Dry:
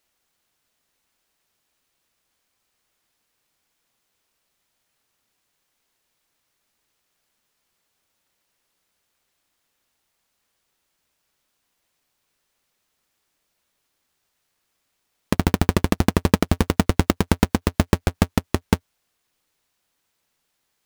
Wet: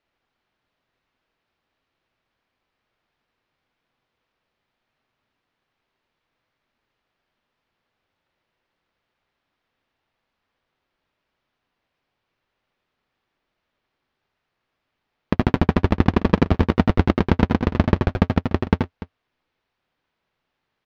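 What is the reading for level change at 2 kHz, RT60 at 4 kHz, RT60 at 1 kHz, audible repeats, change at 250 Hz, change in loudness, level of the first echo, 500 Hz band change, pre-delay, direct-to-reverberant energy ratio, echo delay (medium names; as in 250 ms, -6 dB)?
-0.5 dB, no reverb, no reverb, 2, +2.0 dB, +1.5 dB, -6.0 dB, +1.5 dB, no reverb, no reverb, 80 ms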